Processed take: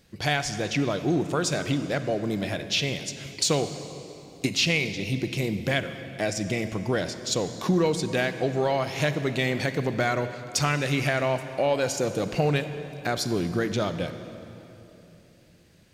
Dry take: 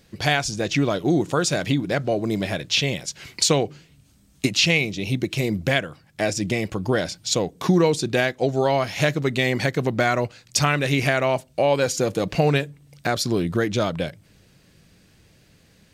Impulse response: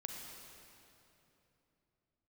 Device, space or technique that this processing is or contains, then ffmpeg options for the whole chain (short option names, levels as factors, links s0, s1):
saturated reverb return: -filter_complex "[0:a]asplit=2[s0][s1];[1:a]atrim=start_sample=2205[s2];[s1][s2]afir=irnorm=-1:irlink=0,asoftclip=type=tanh:threshold=0.158,volume=0.944[s3];[s0][s3]amix=inputs=2:normalize=0,volume=0.398"